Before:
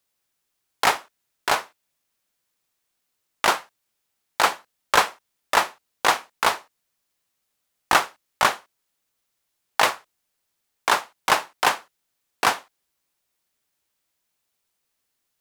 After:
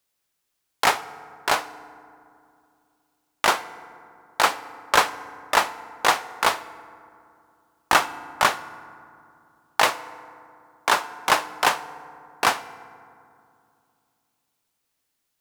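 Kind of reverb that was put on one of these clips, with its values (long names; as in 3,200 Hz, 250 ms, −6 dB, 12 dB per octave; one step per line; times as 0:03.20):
feedback delay network reverb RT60 2.5 s, low-frequency decay 1.35×, high-frequency decay 0.4×, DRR 14.5 dB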